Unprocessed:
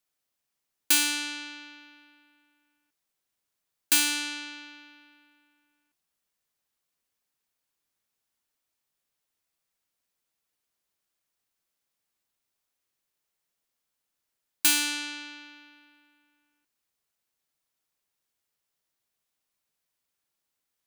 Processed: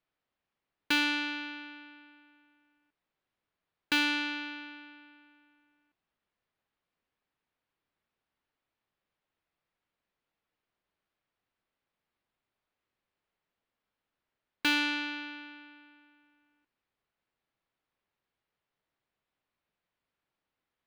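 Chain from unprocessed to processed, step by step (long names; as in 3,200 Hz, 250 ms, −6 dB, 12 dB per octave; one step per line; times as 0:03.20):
high-frequency loss of the air 340 metres
level +4.5 dB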